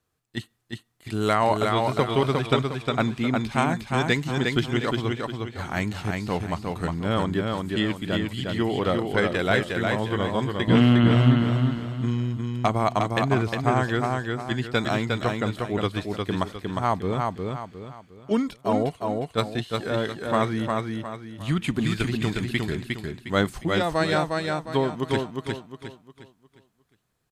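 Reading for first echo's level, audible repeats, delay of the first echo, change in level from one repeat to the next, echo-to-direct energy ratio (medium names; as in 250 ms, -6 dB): -3.5 dB, 4, 357 ms, -9.0 dB, -3.0 dB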